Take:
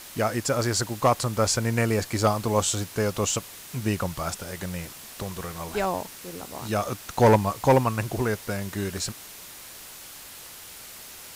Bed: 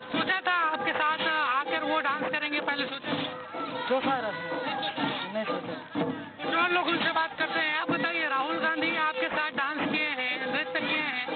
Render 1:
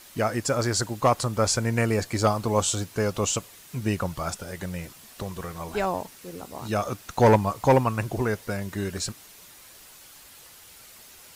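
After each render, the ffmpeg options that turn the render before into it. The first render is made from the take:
-af "afftdn=nr=7:nf=-43"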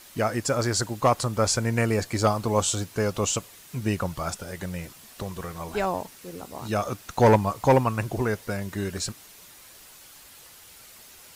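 -af anull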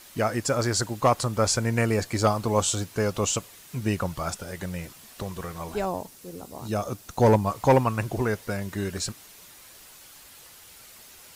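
-filter_complex "[0:a]asettb=1/sr,asplit=3[s0][s1][s2];[s0]atrim=end=5.744[s3];[s1]atrim=start=5.74:end=7.46,asetpts=PTS-STARTPTS,afade=t=in:d=0.004:c=qsin,afade=t=out:st=1.716:d=0.004:c=qsin,equalizer=f=1900:t=o:w=2.2:g=-6.5[s4];[s2]atrim=start=7.456[s5];[s3][s4]acrossfade=d=0.004:c1=hsin:c2=qsin[s6];[s6][s5]acrossfade=d=0.004:c1=qsin:c2=hsin"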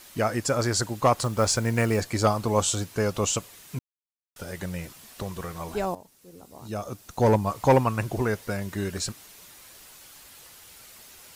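-filter_complex "[0:a]asettb=1/sr,asplit=3[s0][s1][s2];[s0]atrim=end=1.184[s3];[s1]atrim=start=1.18:end=2.01,asetpts=PTS-STARTPTS,afade=t=in:d=0.004:c=qsin,afade=t=out:st=0.826:d=0.004:c=qsin,acrusher=bits=6:mode=log:mix=0:aa=0.000001[s4];[s2]atrim=start=2.006[s5];[s3][s4]acrossfade=d=0.004:c1=hsin:c2=qsin[s6];[s6][s5]acrossfade=d=0.004:c1=qsin:c2=hsin,asplit=4[s7][s8][s9][s10];[s7]atrim=end=3.79,asetpts=PTS-STARTPTS,afade=t=out:st=3.786:d=0.004:c=hsin[s11];[s8]atrim=start=3.79:end=4.36,asetpts=PTS-STARTPTS,volume=0[s12];[s9]atrim=start=4.36:end=5.95,asetpts=PTS-STARTPTS,afade=t=in:d=0.004:c=hsin,afade=t=out:st=1.586:d=0.004:c=hsin:silence=0.199526[s13];[s10]atrim=start=5.95,asetpts=PTS-STARTPTS,afade=t=in:d=1.72:silence=0.199526[s14];[s11][s12][s13][s14]concat=n=4:v=0:a=1"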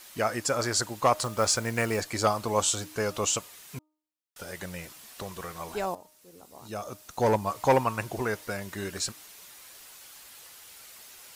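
-af "lowshelf=f=330:g=-9.5,bandreject=f=307.6:t=h:w=4,bandreject=f=615.2:t=h:w=4,bandreject=f=922.8:t=h:w=4,bandreject=f=1230.4:t=h:w=4"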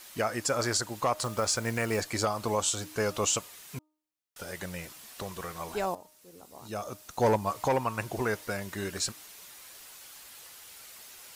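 -af "alimiter=limit=0.15:level=0:latency=1:release=189"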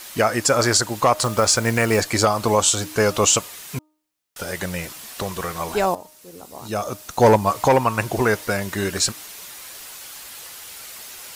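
-af "volume=3.55"

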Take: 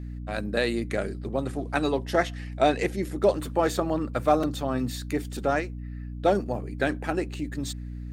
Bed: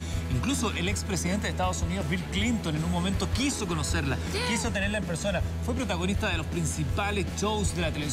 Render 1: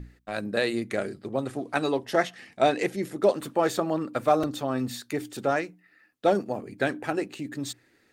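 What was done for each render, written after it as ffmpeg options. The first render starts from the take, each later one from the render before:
-af "bandreject=f=60:t=h:w=6,bandreject=f=120:t=h:w=6,bandreject=f=180:t=h:w=6,bandreject=f=240:t=h:w=6,bandreject=f=300:t=h:w=6"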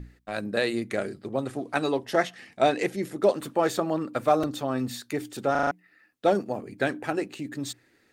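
-filter_complex "[0:a]asplit=6[s0][s1][s2][s3][s4][s5];[s0]atrim=end=5.552[s6];[s1]atrim=start=5.508:end=5.552[s7];[s2]atrim=start=5.508:end=5.552[s8];[s3]atrim=start=5.508:end=5.552[s9];[s4]atrim=start=5.508:end=5.552[s10];[s5]atrim=start=5.708[s11];[s6][s7]acrossfade=d=0.004:c1=hsin:c2=hsin[s12];[s12][s8]acrossfade=d=0.004:c1=hsin:c2=hsin[s13];[s13][s9]acrossfade=d=0.004:c1=hsin:c2=hsin[s14];[s14][s10]acrossfade=d=0.004:c1=hsin:c2=hsin[s15];[s15][s11]acrossfade=d=0.004:c1=hsin:c2=hsin"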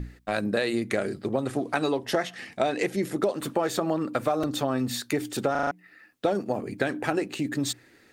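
-filter_complex "[0:a]asplit=2[s0][s1];[s1]alimiter=limit=0.158:level=0:latency=1,volume=1.19[s2];[s0][s2]amix=inputs=2:normalize=0,acompressor=threshold=0.0794:ratio=6"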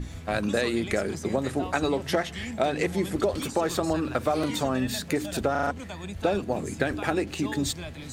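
-filter_complex "[1:a]volume=0.335[s0];[0:a][s0]amix=inputs=2:normalize=0"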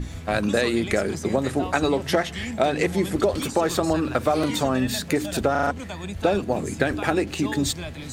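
-af "volume=1.58"

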